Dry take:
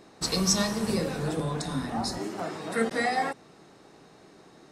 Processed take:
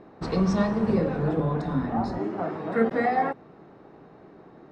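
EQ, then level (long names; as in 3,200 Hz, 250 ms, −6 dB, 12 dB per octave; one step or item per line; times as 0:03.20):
Bessel low-pass filter 1,200 Hz, order 2
+5.0 dB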